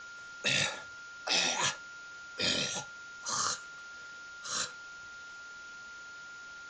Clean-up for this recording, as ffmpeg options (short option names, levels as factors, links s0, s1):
-af "bandreject=f=1400:w=30,afwtdn=0.0028"